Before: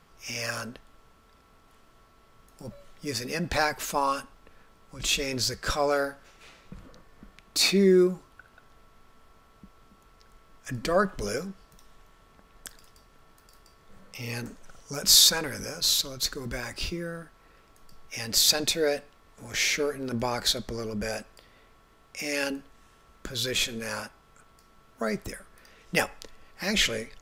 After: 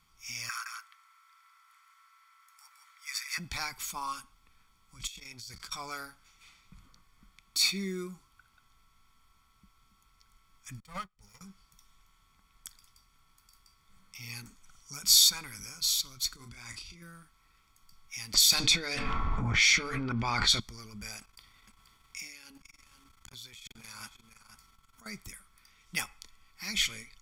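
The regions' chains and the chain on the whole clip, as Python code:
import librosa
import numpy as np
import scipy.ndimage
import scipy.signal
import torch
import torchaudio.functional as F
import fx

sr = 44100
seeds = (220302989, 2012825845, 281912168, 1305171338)

y = fx.chain(x, sr, fx.steep_highpass(hz=830.0, slope=36),
    fx.band_shelf(hz=1600.0, db=8.5, octaves=1.2),
    fx.echo_single(ms=167, db=-5.0), at=(0.49, 3.38))
y = fx.chain(y, sr, fx.over_compress(threshold_db=-38.0, ratio=-1.0),
    fx.transformer_sat(knee_hz=550.0), at=(5.07, 5.72))
y = fx.chain(y, sr, fx.lower_of_two(delay_ms=1.6),
    fx.low_shelf(hz=460.0, db=4.0),
    fx.upward_expand(threshold_db=-37.0, expansion=2.5), at=(10.8, 11.41))
y = fx.chain(y, sr, fx.lowpass(hz=10000.0, slope=12),
    fx.over_compress(threshold_db=-39.0, ratio=-1.0),
    fx.doubler(ms=34.0, db=-7.0), at=(16.36, 17.02))
y = fx.chain(y, sr, fx.hum_notches(base_hz=50, count=9),
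    fx.env_lowpass(base_hz=710.0, full_db=-18.5),
    fx.env_flatten(amount_pct=100), at=(18.34, 20.6))
y = fx.chain(y, sr, fx.over_compress(threshold_db=-38.0, ratio=-1.0),
    fx.echo_single(ms=483, db=-11.0),
    fx.transformer_sat(knee_hz=760.0), at=(21.19, 25.06))
y = fx.tone_stack(y, sr, knobs='5-5-5')
y = y + 0.62 * np.pad(y, (int(0.9 * sr / 1000.0), 0))[:len(y)]
y = y * 10.0 ** (1.5 / 20.0)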